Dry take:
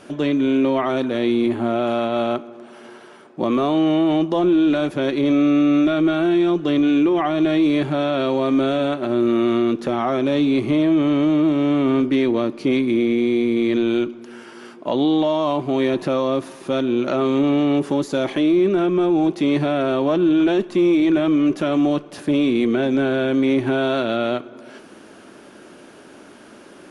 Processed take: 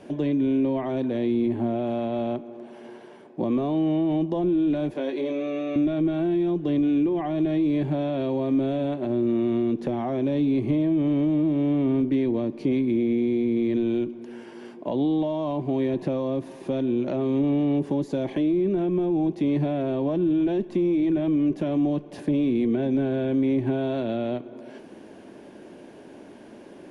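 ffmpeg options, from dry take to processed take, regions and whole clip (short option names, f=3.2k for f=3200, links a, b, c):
-filter_complex "[0:a]asettb=1/sr,asplit=3[a][b][c];[a]atrim=end=4.934[d];[b]atrim=start=4.93:end=5.76,asetpts=PTS-STARTPTS,afade=t=in:d=0.004:c=qsin,afade=t=out:st=0.826:d=0.004:c=qsin,highpass=380,asplit=2[e][f];[f]adelay=19,volume=-5dB[g];[e][g]amix=inputs=2:normalize=0,atrim=end_sample=36603[h];[c]atrim=start=5.756[i];[d][h]acrossfade=d=0.004:c1=hsin:c2=qsin[j];[j][i]acrossfade=d=0.004:c1=qsin:c2=hsin,highshelf=f=2.2k:g=-11,acrossover=split=220[k][l];[l]acompressor=threshold=-28dB:ratio=2.5[m];[k][m]amix=inputs=2:normalize=0,equalizer=f=1.3k:t=o:w=0.33:g=-13.5"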